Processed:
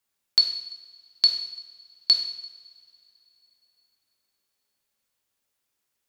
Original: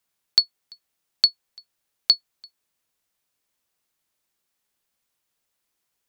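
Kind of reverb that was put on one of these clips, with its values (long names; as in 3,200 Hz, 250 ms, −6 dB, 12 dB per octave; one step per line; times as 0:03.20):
coupled-rooms reverb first 0.84 s, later 3.4 s, from −21 dB, DRR 2 dB
level −3.5 dB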